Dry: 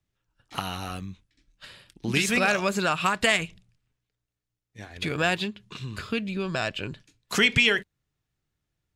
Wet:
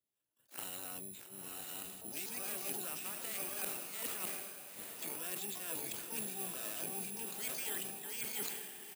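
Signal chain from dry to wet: chunks repeated in reverse 608 ms, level -2.5 dB; high-pass 350 Hz 12 dB/octave; peaking EQ 1.1 kHz -14 dB 1.8 oct; reverse; compression 6:1, threshold -41 dBFS, peak gain reduction 18.5 dB; reverse; treble shelf 2.2 kHz -4 dB; Chebyshev shaper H 3 -20 dB, 4 -35 dB, 7 -32 dB, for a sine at -25.5 dBFS; harmony voices -7 st -13 dB, +12 st -4 dB; on a send: echo that smears into a reverb 909 ms, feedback 42%, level -6 dB; on the sum: careless resampling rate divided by 4×, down filtered, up zero stuff; decay stretcher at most 38 dB/s

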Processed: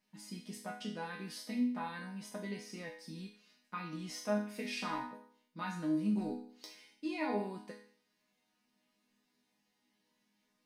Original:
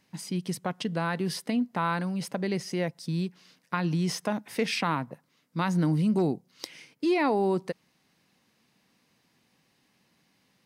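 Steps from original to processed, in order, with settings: chord resonator G#3 minor, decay 0.55 s; trim +10 dB

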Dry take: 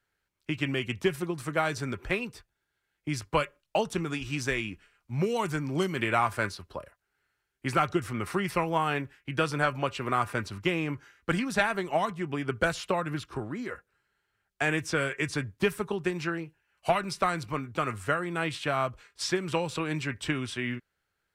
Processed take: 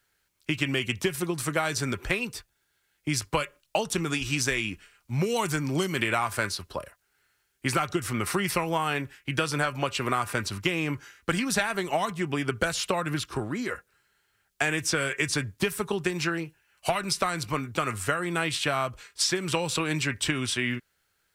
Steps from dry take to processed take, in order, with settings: treble shelf 3.3 kHz +10 dB; compression, threshold -26 dBFS, peak gain reduction 8.5 dB; trim +4 dB

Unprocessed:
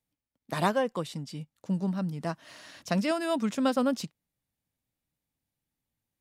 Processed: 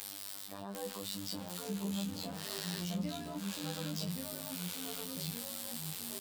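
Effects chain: zero-crossing glitches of -20 dBFS; low-pass 1.9 kHz 6 dB/octave; bass shelf 68 Hz +8.5 dB; de-hum 53.76 Hz, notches 3; reverse; compression 6:1, threshold -36 dBFS, peak gain reduction 14.5 dB; reverse; peak limiter -38.5 dBFS, peak gain reduction 13 dB; robot voice 98.8 Hz; doubling 20 ms -4.5 dB; ever faster or slower copies 750 ms, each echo -2 st, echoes 2; trim +3 dB

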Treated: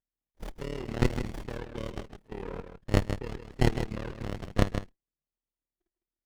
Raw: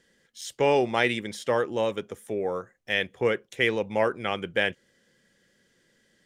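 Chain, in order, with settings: median filter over 3 samples; spectral noise reduction 29 dB; high-order bell 3.4 kHz +14 dB 2.5 oct; in parallel at +2 dB: peak limiter -14 dBFS, peak gain reduction 17.5 dB; on the sum: AM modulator 37 Hz, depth 85%; level held to a coarse grid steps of 15 dB; on a send: delay 156 ms -8.5 dB; on the sum: sliding maximum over 33 samples; trim -8 dB

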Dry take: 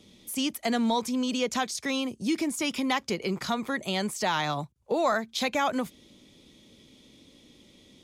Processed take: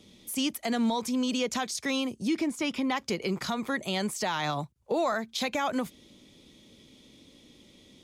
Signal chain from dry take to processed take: 2.27–2.95 s: treble shelf 7.3 kHz -> 4.4 kHz -11.5 dB; peak limiter -19.5 dBFS, peak gain reduction 4 dB

